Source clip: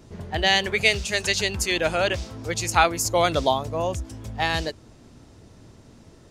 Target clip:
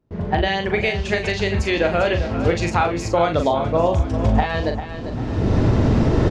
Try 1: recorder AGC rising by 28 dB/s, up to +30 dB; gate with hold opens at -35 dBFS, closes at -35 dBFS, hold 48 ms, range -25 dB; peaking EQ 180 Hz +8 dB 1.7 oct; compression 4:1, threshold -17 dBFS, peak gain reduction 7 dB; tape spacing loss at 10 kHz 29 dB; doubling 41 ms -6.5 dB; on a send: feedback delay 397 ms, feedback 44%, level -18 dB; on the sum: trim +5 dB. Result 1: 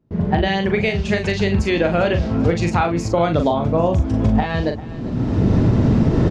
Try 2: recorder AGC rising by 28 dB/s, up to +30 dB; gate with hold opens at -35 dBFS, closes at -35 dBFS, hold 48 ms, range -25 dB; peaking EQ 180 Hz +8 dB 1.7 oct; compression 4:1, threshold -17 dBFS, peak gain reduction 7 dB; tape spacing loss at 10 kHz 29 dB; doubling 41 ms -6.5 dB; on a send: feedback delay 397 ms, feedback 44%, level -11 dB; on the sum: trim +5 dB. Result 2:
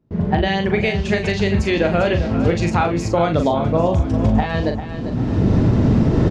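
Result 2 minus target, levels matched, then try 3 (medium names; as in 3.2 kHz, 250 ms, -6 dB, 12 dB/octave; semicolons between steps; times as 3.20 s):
250 Hz band +2.5 dB
recorder AGC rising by 28 dB/s, up to +30 dB; gate with hold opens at -35 dBFS, closes at -35 dBFS, hold 48 ms, range -25 dB; compression 4:1, threshold -17 dBFS, peak gain reduction 5.5 dB; tape spacing loss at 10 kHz 29 dB; doubling 41 ms -6.5 dB; on a send: feedback delay 397 ms, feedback 44%, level -11 dB; on the sum: trim +5 dB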